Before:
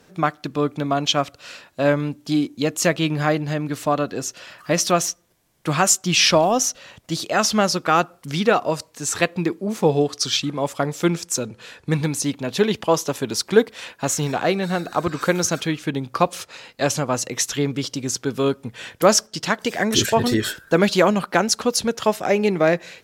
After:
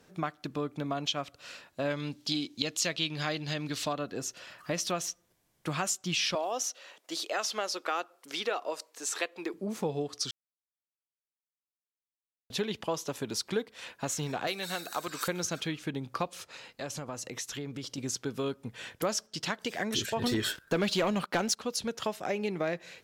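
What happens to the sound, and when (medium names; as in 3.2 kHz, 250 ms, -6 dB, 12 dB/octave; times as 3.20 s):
1.90–3.93 s: peaking EQ 4.3 kHz +12.5 dB 1.6 oct
6.35–9.54 s: high-pass 340 Hz 24 dB/octave
10.31–12.50 s: mute
14.47–15.28 s: RIAA curve recording
16.29–17.98 s: compression 3:1, threshold -29 dBFS
20.22–21.57 s: waveshaping leveller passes 2
whole clip: dynamic bell 3.3 kHz, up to +4 dB, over -33 dBFS, Q 1.1; compression 2.5:1, threshold -24 dBFS; trim -7.5 dB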